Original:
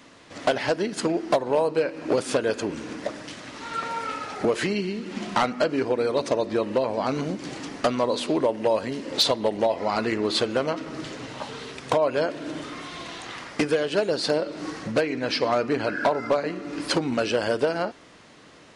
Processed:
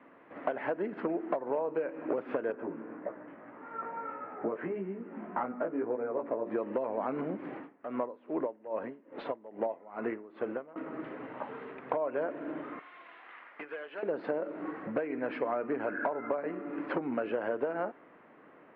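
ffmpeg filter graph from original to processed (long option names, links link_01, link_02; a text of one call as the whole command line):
ffmpeg -i in.wav -filter_complex "[0:a]asettb=1/sr,asplit=3[link_01][link_02][link_03];[link_01]atrim=end=2.524[link_04];[link_02]atrim=start=2.52:end=6.46,asetpts=PTS-STARTPTS,afade=type=in:duration=0.004:curve=qsin,afade=type=out:start_time=3.936:duration=0.004:curve=qsin,lowpass=1700,flanger=delay=15.5:depth=2.7:speed=1.7[link_05];[link_03]atrim=start=6.456[link_06];[link_04][link_05]acrossfade=duration=0.004:curve1=hsin:curve2=qsin[link_07];[link_07][link_06]acrossfade=duration=0.004:curve1=qsin:curve2=hsin,asettb=1/sr,asplit=3[link_08][link_09][link_10];[link_08]atrim=end=7.574[link_11];[link_09]atrim=start=7.57:end=10.76,asetpts=PTS-STARTPTS,afade=type=in:duration=0.004:curve=qsin,afade=type=out:start_time=3.186:duration=0.004:curve=qsin,highshelf=frequency=4600:gain=-6,aeval=exprs='val(0)*pow(10,-22*(0.5-0.5*cos(2*PI*2.4*n/s))/20)':channel_layout=same[link_12];[link_10]atrim=start=10.756[link_13];[link_11][link_12]acrossfade=duration=0.004:curve1=hsin:curve2=qsin[link_14];[link_14][link_13]acrossfade=duration=0.004:curve1=qsin:curve2=hsin,asettb=1/sr,asplit=3[link_15][link_16][link_17];[link_15]atrim=end=12.794[link_18];[link_16]atrim=start=12.79:end=14.03,asetpts=PTS-STARTPTS,afade=type=in:duration=0.004:curve=qsin,afade=type=out:start_time=1.236:duration=0.004:curve=qsin,bandpass=frequency=3700:width_type=q:width=0.68,asoftclip=type=hard:threshold=-26.5dB[link_19];[link_17]atrim=start=14.026[link_20];[link_18][link_19]acrossfade=duration=0.004:curve1=hsin:curve2=qsin[link_21];[link_21][link_20]acrossfade=duration=0.004:curve1=qsin:curve2=hsin,lowpass=frequency=2700:width=0.5412,lowpass=frequency=2700:width=1.3066,acrossover=split=190 2100:gain=0.126 1 0.0891[link_22][link_23][link_24];[link_22][link_23][link_24]amix=inputs=3:normalize=0,acompressor=threshold=-24dB:ratio=6,volume=-4dB" out.wav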